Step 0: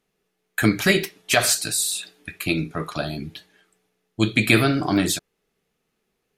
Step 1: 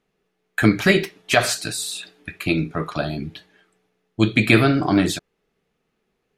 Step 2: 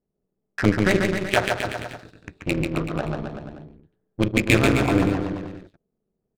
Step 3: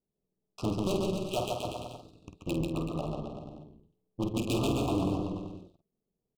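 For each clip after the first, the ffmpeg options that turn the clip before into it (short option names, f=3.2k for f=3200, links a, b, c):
-af "lowpass=f=3k:p=1,volume=3dB"
-af "tremolo=f=200:d=0.824,adynamicsmooth=sensitivity=1.5:basefreq=520,aecho=1:1:140|266|379.4|481.5|573.3:0.631|0.398|0.251|0.158|0.1"
-filter_complex "[0:a]volume=16dB,asoftclip=hard,volume=-16dB,asuperstop=centerf=1800:order=12:qfactor=1.3,asplit=2[a][b];[b]adelay=49,volume=-8dB[c];[a][c]amix=inputs=2:normalize=0,volume=-7.5dB"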